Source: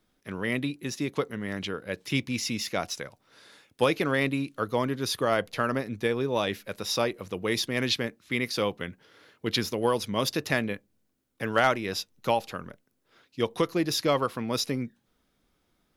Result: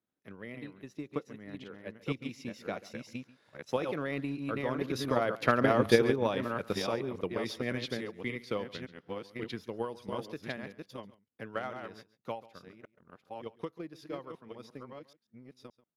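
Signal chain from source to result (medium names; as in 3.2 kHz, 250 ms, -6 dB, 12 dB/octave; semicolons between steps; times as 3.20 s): chunks repeated in reverse 558 ms, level -3.5 dB; Doppler pass-by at 5.83 s, 7 m/s, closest 2 m; high-pass 100 Hz; treble shelf 3.1 kHz -11 dB; in parallel at -2 dB: compressor with a negative ratio -44 dBFS, ratio -1; on the sum: transient shaper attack +8 dB, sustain -2 dB; on a send: delay 138 ms -19.5 dB; on the sum: trim +1 dB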